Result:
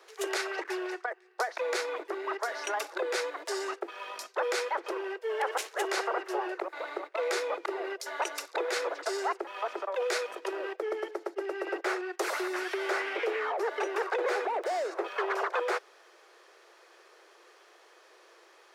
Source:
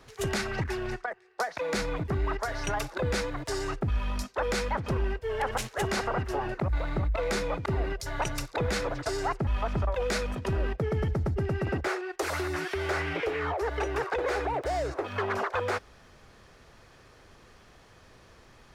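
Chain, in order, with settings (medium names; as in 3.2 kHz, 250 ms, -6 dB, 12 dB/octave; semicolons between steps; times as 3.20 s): Chebyshev high-pass 340 Hz, order 6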